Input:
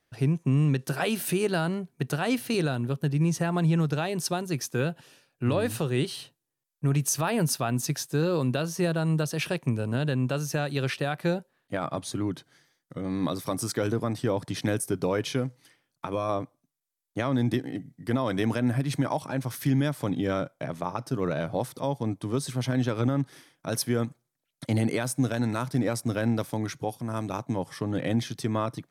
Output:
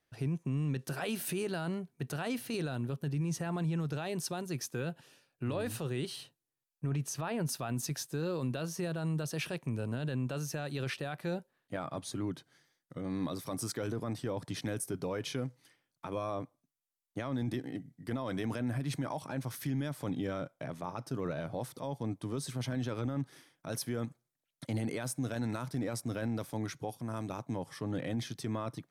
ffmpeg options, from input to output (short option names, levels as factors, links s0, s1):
-filter_complex "[0:a]asettb=1/sr,asplit=3[s0][s1][s2];[s0]atrim=end=6.864[s3];[s1]atrim=start=6.86:end=7.49,asetpts=PTS-STARTPTS,afade=t=in:d=0.004:c=qsin,afade=t=out:st=0.626:d=0.004:c=qsin,lowpass=f=3300:p=1[s4];[s2]atrim=start=7.486[s5];[s3][s4]acrossfade=d=0.004:c1=hsin:c2=qsin[s6];[s6][s5]acrossfade=d=0.004:c1=qsin:c2=hsin,alimiter=limit=0.0944:level=0:latency=1:release=11,volume=0.501"